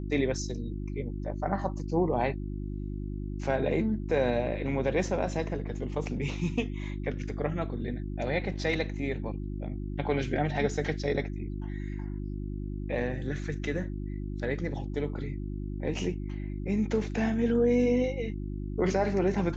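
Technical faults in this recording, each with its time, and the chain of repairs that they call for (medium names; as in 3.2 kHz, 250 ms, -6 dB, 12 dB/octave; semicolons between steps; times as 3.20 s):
hum 50 Hz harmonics 7 -35 dBFS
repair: de-hum 50 Hz, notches 7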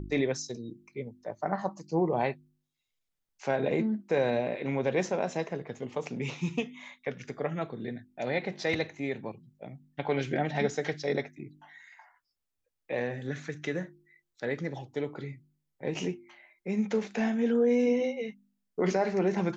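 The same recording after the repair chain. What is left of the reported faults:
nothing left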